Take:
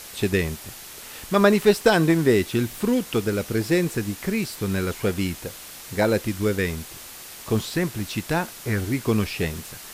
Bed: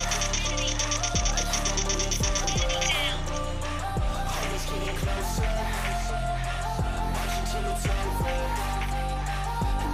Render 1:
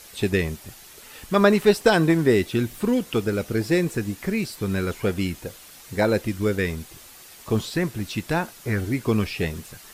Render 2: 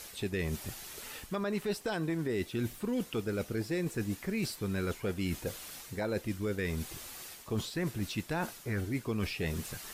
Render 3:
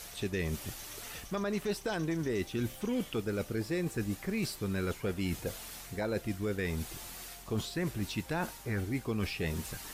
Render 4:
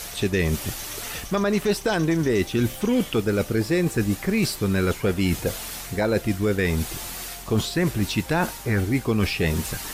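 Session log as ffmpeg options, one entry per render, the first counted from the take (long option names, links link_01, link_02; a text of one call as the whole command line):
ffmpeg -i in.wav -af "afftdn=noise_reduction=7:noise_floor=-41" out.wav
ffmpeg -i in.wav -af "alimiter=limit=-14dB:level=0:latency=1:release=195,areverse,acompressor=threshold=-32dB:ratio=4,areverse" out.wav
ffmpeg -i in.wav -i bed.wav -filter_complex "[1:a]volume=-26.5dB[link_01];[0:a][link_01]amix=inputs=2:normalize=0" out.wav
ffmpeg -i in.wav -af "volume=11.5dB" out.wav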